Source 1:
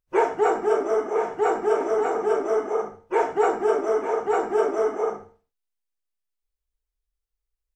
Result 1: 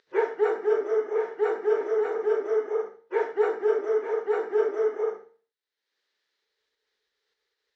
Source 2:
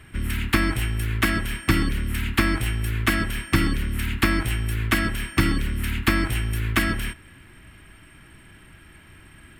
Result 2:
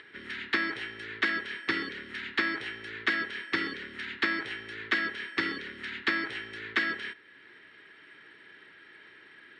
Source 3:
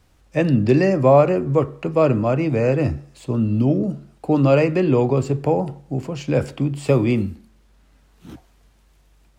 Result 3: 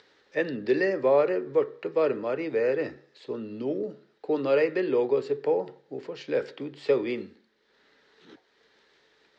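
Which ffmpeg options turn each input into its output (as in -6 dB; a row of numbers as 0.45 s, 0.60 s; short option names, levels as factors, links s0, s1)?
-af "acompressor=mode=upward:threshold=0.0126:ratio=2.5,highpass=430,equalizer=f=430:t=q:w=4:g=9,equalizer=f=700:t=q:w=4:g=-8,equalizer=f=1100:t=q:w=4:g=-5,equalizer=f=1800:t=q:w=4:g=7,equalizer=f=2600:t=q:w=4:g=-4,equalizer=f=3900:t=q:w=4:g=5,lowpass=f=5000:w=0.5412,lowpass=f=5000:w=1.3066,volume=0.501"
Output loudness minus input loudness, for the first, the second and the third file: -3.0 LU, -7.5 LU, -8.5 LU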